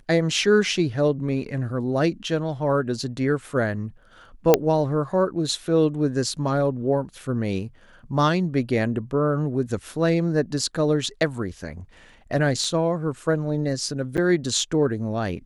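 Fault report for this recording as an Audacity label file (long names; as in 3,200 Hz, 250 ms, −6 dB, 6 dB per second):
4.540000	4.540000	click −1 dBFS
12.640000	12.640000	drop-out 3.5 ms
14.170000	14.180000	drop-out 8.3 ms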